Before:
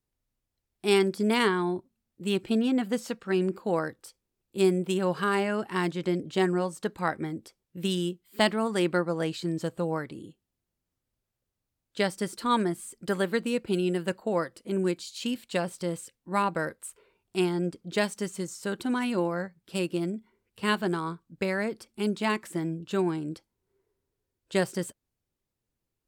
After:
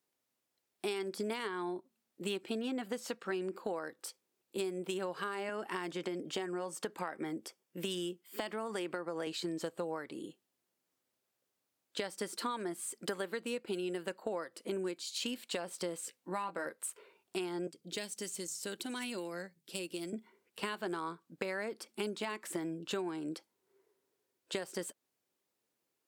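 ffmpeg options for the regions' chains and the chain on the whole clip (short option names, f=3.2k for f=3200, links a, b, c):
-filter_complex "[0:a]asettb=1/sr,asplit=3[a][b][c];[a]atrim=end=5.494[d];[b]atrim=start=5.49:end=9.27,asetpts=PTS-STARTPTS,afade=t=in:d=0.004:c=qsin,afade=t=out:st=3.776:d=0.004:c=qsin,highpass=f=100:w=0.5412,highpass=f=100:w=1.3066,bandreject=f=4k:w=9.2,acompressor=threshold=-27dB:ratio=3:attack=3.2:release=140:knee=1:detection=peak[e];[c]atrim=start=9.266[f];[d][e]acrossfade=d=0.004:c1=hsin:c2=qsin[g];[g][f]acrossfade=d=0.004:c1=qsin:c2=hsin,asettb=1/sr,asplit=3[h][i][j];[h]atrim=end=16.024[k];[i]atrim=start=16.02:end=16.66,asetpts=PTS-STARTPTS,afade=t=in:d=0.004:c=qsin,afade=t=out:st=0.636:d=0.004:c=qsin,asplit=2[l][m];[m]adelay=16,volume=-5.5dB[n];[l][n]amix=inputs=2:normalize=0,atrim=end_sample=28224,acompressor=threshold=-36dB:ratio=1.5:attack=3.2:release=140:knee=1:detection=peak[o];[j]atrim=start=16.656[p];[k][o]acrossfade=d=0.004:c1=hsin:c2=qsin[q];[q][p]acrossfade=d=0.004:c1=qsin:c2=hsin,asettb=1/sr,asplit=3[r][s][t];[r]atrim=end=17.674[u];[s]atrim=start=17.67:end=20.13,asetpts=PTS-STARTPTS,afade=t=in:d=0.004:c=qsin,afade=t=out:st=2.456:d=0.004:c=qsin,equalizer=f=1.1k:w=0.58:g=-12.5,bandreject=f=50:t=h:w=6,bandreject=f=100:t=h:w=6,bandreject=f=150:t=h:w=6,acrossover=split=570|1400[v][w][x];[v]acompressor=threshold=-41dB:ratio=4[y];[w]acompressor=threshold=-51dB:ratio=4[z];[x]acompressor=threshold=-42dB:ratio=4[aa];[y][z][aa]amix=inputs=3:normalize=0[ab];[t]atrim=start=20.126[ac];[u][ab]acrossfade=d=0.004:c1=hsin:c2=qsin[ad];[ad][ac]acrossfade=d=0.004:c1=qsin:c2=hsin,highpass=320,alimiter=limit=-19.5dB:level=0:latency=1:release=212,acompressor=threshold=-39dB:ratio=6,volume=4dB"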